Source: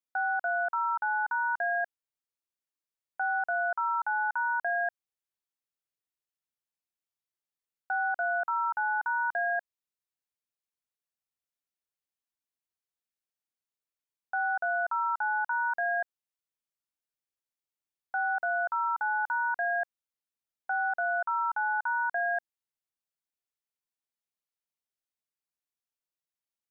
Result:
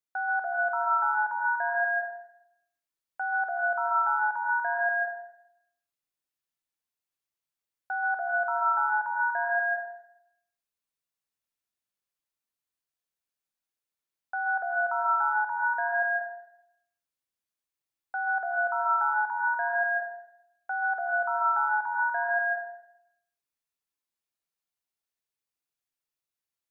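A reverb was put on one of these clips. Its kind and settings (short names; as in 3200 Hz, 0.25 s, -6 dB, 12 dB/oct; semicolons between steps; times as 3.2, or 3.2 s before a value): plate-style reverb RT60 0.78 s, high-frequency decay 0.95×, pre-delay 0.12 s, DRR -1 dB; gain -1.5 dB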